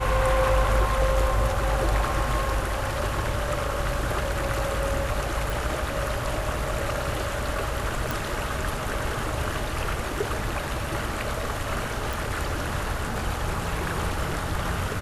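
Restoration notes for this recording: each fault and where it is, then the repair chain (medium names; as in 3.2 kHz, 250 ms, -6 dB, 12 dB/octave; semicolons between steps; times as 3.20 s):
5.50 s: pop
8.11 s: pop
12.13 s: pop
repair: de-click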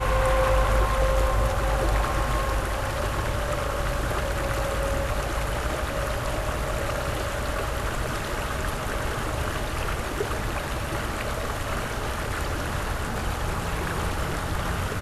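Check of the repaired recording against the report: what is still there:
nothing left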